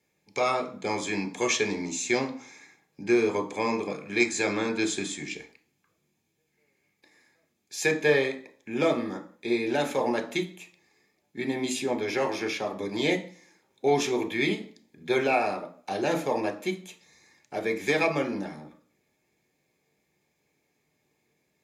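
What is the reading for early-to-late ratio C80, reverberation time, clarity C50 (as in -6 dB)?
18.0 dB, 0.45 s, 13.5 dB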